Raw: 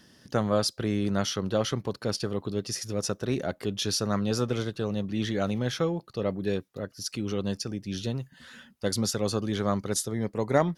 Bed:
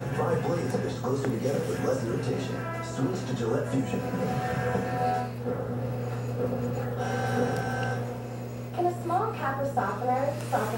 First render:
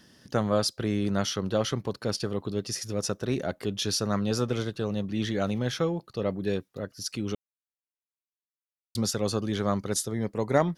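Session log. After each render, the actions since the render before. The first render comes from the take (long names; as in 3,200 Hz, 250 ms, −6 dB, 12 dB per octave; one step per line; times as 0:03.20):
0:07.35–0:08.95: silence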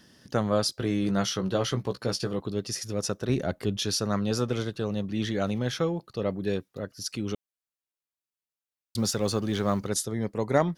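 0:00.67–0:02.40: double-tracking delay 16 ms −7 dB
0:03.29–0:03.77: low-shelf EQ 160 Hz +7.5 dB
0:08.98–0:09.87: mu-law and A-law mismatch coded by mu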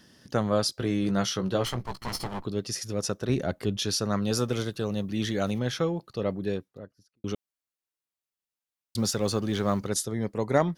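0:01.65–0:02.45: lower of the sound and its delayed copy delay 0.95 ms
0:04.22–0:05.60: high-shelf EQ 7,700 Hz +10.5 dB
0:06.28–0:07.24: fade out and dull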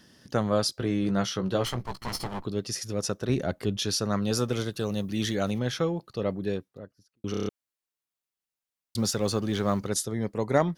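0:00.78–0:01.50: high-shelf EQ 4,000 Hz −5 dB
0:04.76–0:05.35: high-shelf EQ 5,200 Hz +7 dB
0:07.31: stutter in place 0.03 s, 6 plays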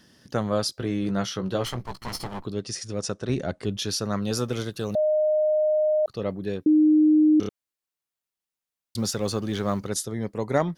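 0:02.52–0:03.65: Butterworth low-pass 10,000 Hz 72 dB per octave
0:04.95–0:06.06: beep over 614 Hz −18.5 dBFS
0:06.66–0:07.40: beep over 307 Hz −14 dBFS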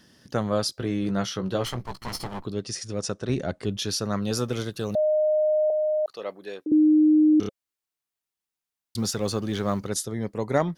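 0:05.70–0:06.72: high-pass filter 560 Hz
0:07.33–0:09.19: notch filter 550 Hz, Q 7.9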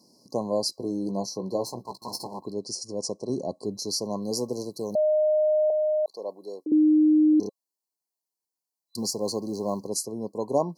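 high-pass filter 230 Hz 12 dB per octave
brick-wall band-stop 1,100–4,000 Hz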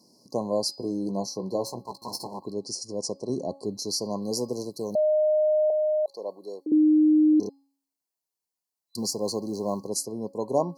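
hum removal 275.8 Hz, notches 18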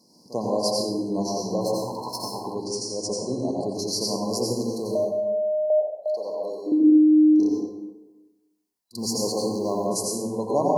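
backwards echo 43 ms −18 dB
dense smooth reverb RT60 1.1 s, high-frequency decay 0.55×, pre-delay 75 ms, DRR −2.5 dB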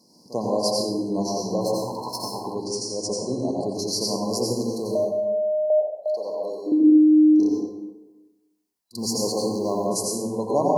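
level +1 dB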